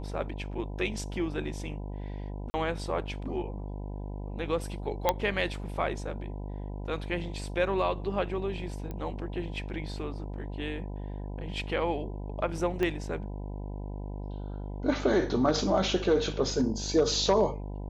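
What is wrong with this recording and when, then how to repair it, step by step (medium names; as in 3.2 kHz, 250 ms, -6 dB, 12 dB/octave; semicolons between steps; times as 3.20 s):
buzz 50 Hz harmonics 20 -37 dBFS
2.50–2.54 s: dropout 40 ms
5.09 s: pop -9 dBFS
8.91 s: pop -25 dBFS
12.83 s: pop -17 dBFS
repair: de-click; de-hum 50 Hz, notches 20; interpolate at 2.50 s, 40 ms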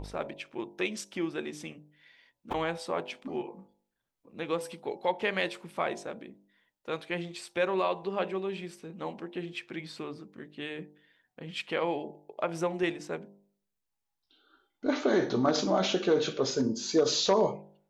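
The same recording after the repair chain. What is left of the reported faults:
12.83 s: pop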